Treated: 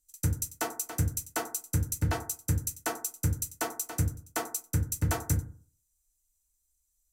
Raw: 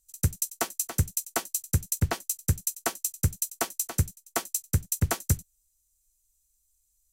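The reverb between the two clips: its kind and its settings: FDN reverb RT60 0.45 s, low-frequency decay 1.05×, high-frequency decay 0.3×, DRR -0.5 dB; trim -5.5 dB

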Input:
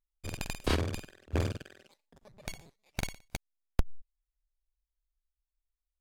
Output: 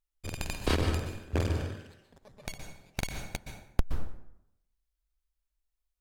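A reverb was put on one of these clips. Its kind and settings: plate-style reverb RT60 0.8 s, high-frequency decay 0.65×, pre-delay 110 ms, DRR 5 dB; trim +1 dB

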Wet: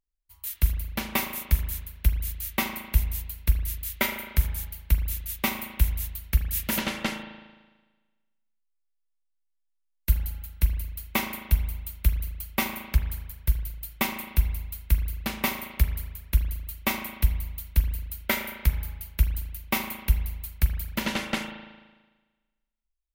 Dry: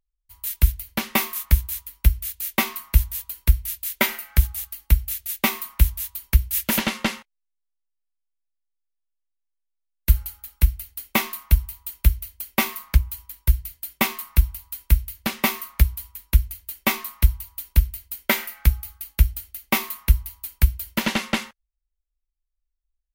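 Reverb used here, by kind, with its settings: spring tank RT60 1.3 s, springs 37 ms, chirp 55 ms, DRR 5.5 dB; trim -5.5 dB

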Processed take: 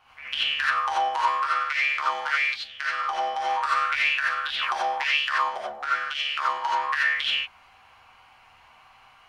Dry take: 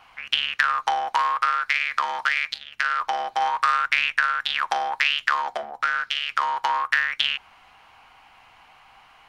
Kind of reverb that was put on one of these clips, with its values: gated-style reverb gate 110 ms rising, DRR -7 dB; trim -9.5 dB

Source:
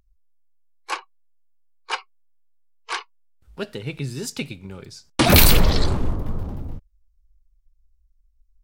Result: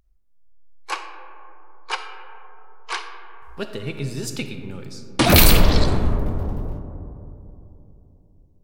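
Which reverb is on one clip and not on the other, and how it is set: algorithmic reverb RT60 3.3 s, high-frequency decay 0.25×, pre-delay 10 ms, DRR 6.5 dB

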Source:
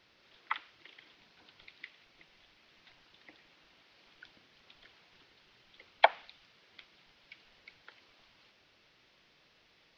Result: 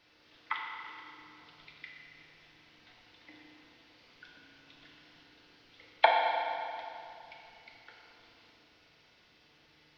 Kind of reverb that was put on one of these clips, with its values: FDN reverb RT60 2.6 s, low-frequency decay 1.4×, high-frequency decay 0.8×, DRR -2 dB; trim -1.5 dB

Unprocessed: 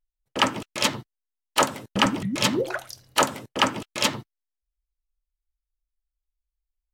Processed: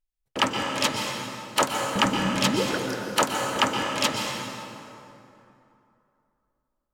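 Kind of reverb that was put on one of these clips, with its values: plate-style reverb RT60 2.9 s, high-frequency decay 0.6×, pre-delay 110 ms, DRR 1.5 dB; trim -2 dB

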